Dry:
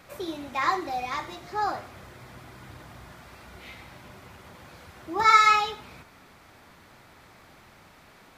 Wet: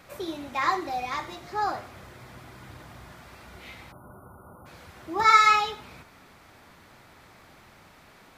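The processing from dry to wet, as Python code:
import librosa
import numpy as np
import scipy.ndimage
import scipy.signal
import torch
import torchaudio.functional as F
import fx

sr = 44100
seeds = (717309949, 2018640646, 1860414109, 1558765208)

y = fx.spec_erase(x, sr, start_s=3.92, length_s=0.74, low_hz=1500.0, high_hz=9100.0)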